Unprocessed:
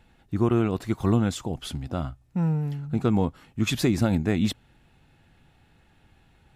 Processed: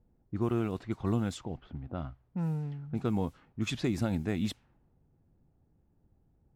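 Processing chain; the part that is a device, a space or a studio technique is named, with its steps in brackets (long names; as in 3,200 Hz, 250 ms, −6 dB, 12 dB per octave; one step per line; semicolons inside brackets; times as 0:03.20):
cassette deck with a dynamic noise filter (white noise bed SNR 32 dB; low-pass that shuts in the quiet parts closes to 410 Hz, open at −19.5 dBFS)
0:01.57–0:02.23: low-pass filter 5,100 Hz 12 dB per octave
level −8 dB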